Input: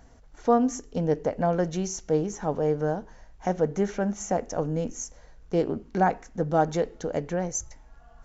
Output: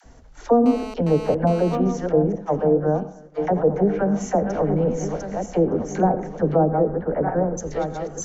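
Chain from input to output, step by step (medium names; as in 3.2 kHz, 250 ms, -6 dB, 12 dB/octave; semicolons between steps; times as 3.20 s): backward echo that repeats 607 ms, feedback 58%, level -7.5 dB; 2.32–3.69 s: gate -27 dBFS, range -20 dB; 6.57–7.57 s: low-pass 2.2 kHz -> 1.4 kHz 24 dB/octave; low-pass that closes with the level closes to 620 Hz, closed at -19 dBFS; phase dispersion lows, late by 49 ms, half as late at 540 Hz; reverberation RT60 0.50 s, pre-delay 77 ms, DRR 15.5 dB; 0.66–1.75 s: mobile phone buzz -41 dBFS; trim +6 dB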